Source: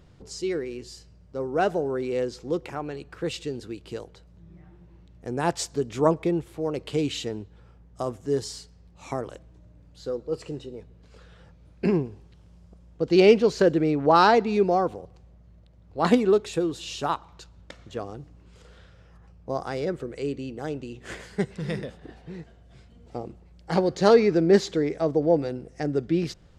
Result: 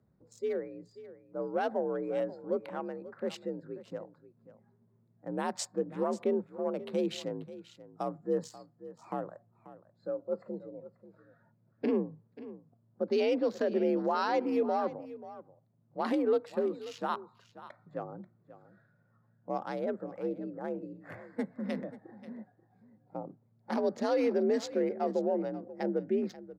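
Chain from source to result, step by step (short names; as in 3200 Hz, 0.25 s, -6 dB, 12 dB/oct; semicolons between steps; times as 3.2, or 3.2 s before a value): Wiener smoothing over 15 samples; limiter -16 dBFS, peak gain reduction 11.5 dB; frequency shift +55 Hz; spectral noise reduction 12 dB; echo 0.536 s -16 dB; gain -4.5 dB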